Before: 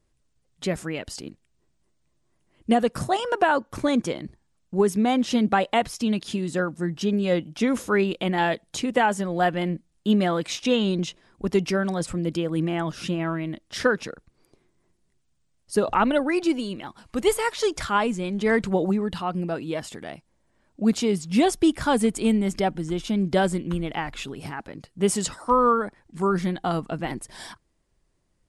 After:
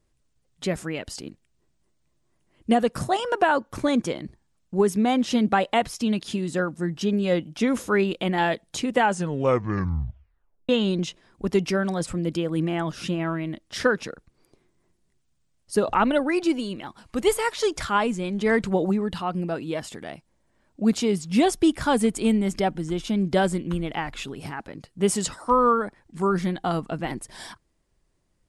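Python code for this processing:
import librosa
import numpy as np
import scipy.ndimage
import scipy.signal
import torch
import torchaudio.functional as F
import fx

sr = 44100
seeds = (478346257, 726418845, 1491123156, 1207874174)

y = fx.edit(x, sr, fx.tape_stop(start_s=9.05, length_s=1.64), tone=tone)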